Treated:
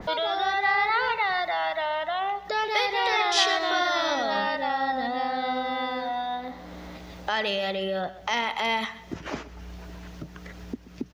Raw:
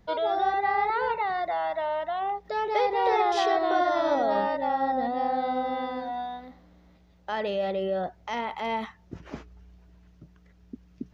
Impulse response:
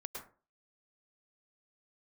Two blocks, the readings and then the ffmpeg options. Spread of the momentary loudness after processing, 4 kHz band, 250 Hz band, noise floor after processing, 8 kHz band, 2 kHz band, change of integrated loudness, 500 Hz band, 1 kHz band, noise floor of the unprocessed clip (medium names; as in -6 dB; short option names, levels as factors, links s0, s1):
19 LU, +12.0 dB, -1.0 dB, -45 dBFS, no reading, +8.0 dB, +1.5 dB, -2.5 dB, 0.0 dB, -58 dBFS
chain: -filter_complex "[0:a]acrossover=split=210|1300[s0][s1][s2];[s1]acompressor=threshold=0.0141:ratio=6[s3];[s0][s3][s2]amix=inputs=3:normalize=0,lowshelf=f=230:g=-10,acompressor=mode=upward:threshold=0.0158:ratio=2.5,aecho=1:1:130|260|390|520:0.141|0.0593|0.0249|0.0105,adynamicequalizer=threshold=0.00891:dfrequency=2600:dqfactor=0.7:tfrequency=2600:tqfactor=0.7:attack=5:release=100:ratio=0.375:range=2.5:mode=boostabove:tftype=highshelf,volume=2.66"